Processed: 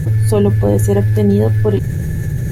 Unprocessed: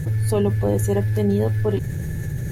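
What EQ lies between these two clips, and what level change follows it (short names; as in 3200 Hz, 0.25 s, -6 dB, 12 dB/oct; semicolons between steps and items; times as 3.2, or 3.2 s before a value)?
low shelf 440 Hz +3 dB; +5.0 dB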